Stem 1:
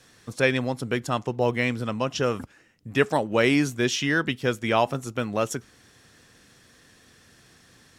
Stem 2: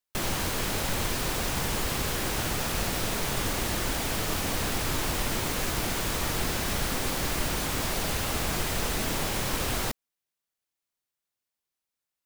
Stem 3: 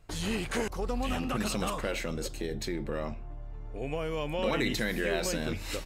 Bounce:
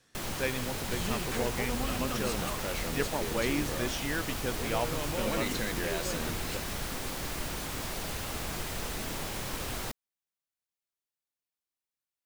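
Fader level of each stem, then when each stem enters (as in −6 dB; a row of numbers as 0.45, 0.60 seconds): −11.0, −7.0, −4.5 decibels; 0.00, 0.00, 0.80 seconds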